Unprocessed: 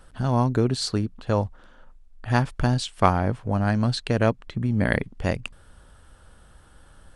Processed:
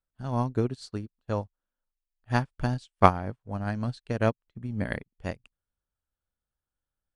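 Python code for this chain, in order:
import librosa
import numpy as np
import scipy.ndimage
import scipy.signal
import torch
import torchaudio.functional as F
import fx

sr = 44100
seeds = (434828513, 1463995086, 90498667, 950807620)

y = fx.upward_expand(x, sr, threshold_db=-42.0, expansion=2.5)
y = y * 10.0 ** (2.0 / 20.0)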